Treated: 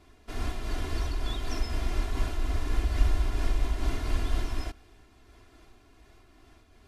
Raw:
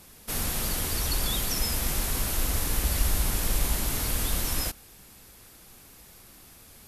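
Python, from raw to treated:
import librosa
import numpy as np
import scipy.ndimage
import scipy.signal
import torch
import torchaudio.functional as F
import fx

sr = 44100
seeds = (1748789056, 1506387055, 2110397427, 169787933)

y = fx.spacing_loss(x, sr, db_at_10k=23)
y = y + 0.78 * np.pad(y, (int(2.9 * sr / 1000.0), 0))[:len(y)]
y = fx.am_noise(y, sr, seeds[0], hz=5.7, depth_pct=55)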